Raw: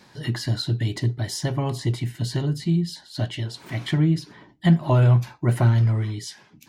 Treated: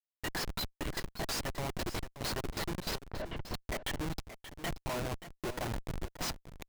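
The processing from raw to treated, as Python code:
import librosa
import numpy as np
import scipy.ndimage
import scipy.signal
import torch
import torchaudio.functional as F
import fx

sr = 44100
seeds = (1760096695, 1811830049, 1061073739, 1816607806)

p1 = scipy.signal.sosfilt(scipy.signal.butter(2, 620.0, 'highpass', fs=sr, output='sos'), x)
p2 = fx.transient(p1, sr, attack_db=3, sustain_db=-11)
p3 = fx.rider(p2, sr, range_db=5, speed_s=2.0)
p4 = fx.schmitt(p3, sr, flips_db=-32.0)
p5 = fx.spacing_loss(p4, sr, db_at_10k=33, at=(3.05, 3.53), fade=0.02)
p6 = p5 + fx.echo_single(p5, sr, ms=579, db=-12.5, dry=0)
y = fx.record_warp(p6, sr, rpm=78.0, depth_cents=100.0)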